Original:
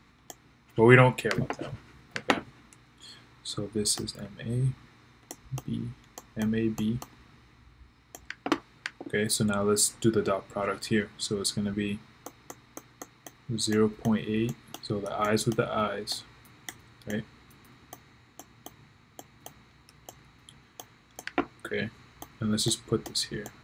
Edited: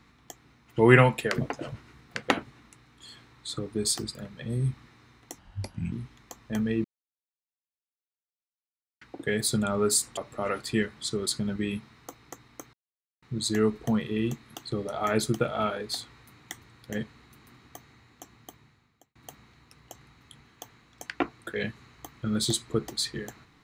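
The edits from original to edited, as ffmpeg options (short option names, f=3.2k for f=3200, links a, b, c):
-filter_complex "[0:a]asplit=9[a][b][c][d][e][f][g][h][i];[a]atrim=end=5.394[j];[b]atrim=start=5.39:end=5.79,asetpts=PTS-STARTPTS,asetrate=33075,aresample=44100[k];[c]atrim=start=5.786:end=6.71,asetpts=PTS-STARTPTS,afade=t=out:st=0.92:d=0.004:c=hsin[l];[d]atrim=start=6.71:end=8.88,asetpts=PTS-STARTPTS,volume=0[m];[e]atrim=start=8.88:end=10.042,asetpts=PTS-STARTPTS,afade=t=in:d=0.004:c=hsin[n];[f]atrim=start=10.348:end=12.91,asetpts=PTS-STARTPTS,afade=t=out:st=2.558:d=0.004:c=hsin[o];[g]atrim=start=12.91:end=13.4,asetpts=PTS-STARTPTS,volume=0[p];[h]atrim=start=13.4:end=19.33,asetpts=PTS-STARTPTS,afade=t=in:d=0.004:c=hsin,afade=t=out:st=5.13:d=0.8[q];[i]atrim=start=19.33,asetpts=PTS-STARTPTS,afade=t=in:d=0.004:c=hsin[r];[j][k]acrossfade=d=0.004:c1=hsin:c2=hsin[s];[l][m][n]concat=n=3:v=0:a=1[t];[s][t]acrossfade=d=0.004:c1=hsin:c2=hsin[u];[o][p][q][r]concat=n=4:v=0:a=1[v];[u][v]acrossfade=d=0.004:c1=hsin:c2=hsin"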